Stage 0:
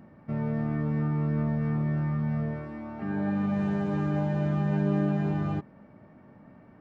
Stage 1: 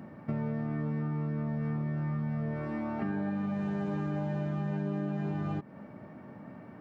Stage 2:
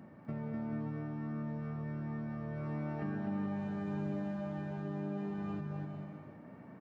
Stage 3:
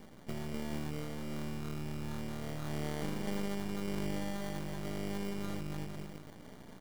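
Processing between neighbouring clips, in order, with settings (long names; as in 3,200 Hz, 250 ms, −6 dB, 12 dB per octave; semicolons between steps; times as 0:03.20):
high-pass filter 98 Hz; downward compressor 12 to 1, threshold −35 dBFS, peak gain reduction 13 dB; level +5.5 dB
bouncing-ball delay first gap 250 ms, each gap 0.75×, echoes 5; level −7 dB
decimation without filtering 17×; half-wave rectification; level +4 dB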